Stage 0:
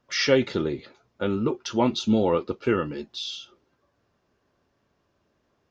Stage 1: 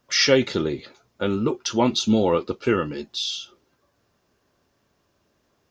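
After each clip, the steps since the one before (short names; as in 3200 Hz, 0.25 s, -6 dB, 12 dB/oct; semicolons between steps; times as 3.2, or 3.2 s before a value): high shelf 5300 Hz +11.5 dB; gain +2 dB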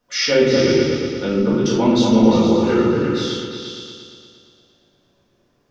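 repeats that get brighter 0.116 s, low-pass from 400 Hz, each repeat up 2 oct, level 0 dB; shoebox room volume 170 m³, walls mixed, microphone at 1.9 m; gain -6.5 dB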